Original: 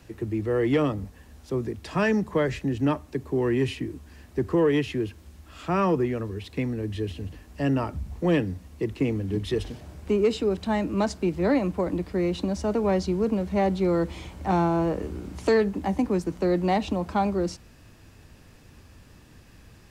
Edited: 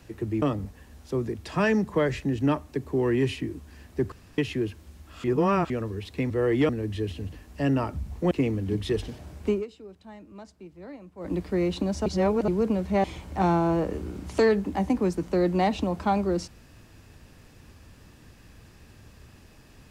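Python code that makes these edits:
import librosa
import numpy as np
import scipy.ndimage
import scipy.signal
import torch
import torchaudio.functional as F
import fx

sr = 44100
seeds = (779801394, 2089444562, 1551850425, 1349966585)

y = fx.edit(x, sr, fx.move(start_s=0.42, length_s=0.39, to_s=6.69),
    fx.room_tone_fill(start_s=4.51, length_s=0.26),
    fx.reverse_span(start_s=5.63, length_s=0.46),
    fx.cut(start_s=8.31, length_s=0.62),
    fx.fade_down_up(start_s=10.11, length_s=1.86, db=-20.0, fade_s=0.17),
    fx.reverse_span(start_s=12.68, length_s=0.42),
    fx.cut(start_s=13.66, length_s=0.47), tone=tone)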